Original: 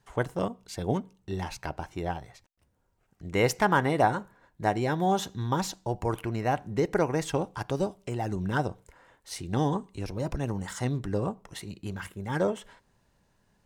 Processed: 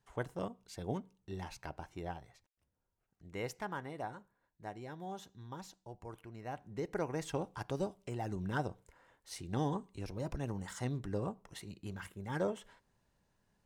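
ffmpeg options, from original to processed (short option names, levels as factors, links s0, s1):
-af "volume=1.12,afade=t=out:st=1.99:d=1.87:silence=0.354813,afade=t=in:st=6.32:d=1.2:silence=0.281838"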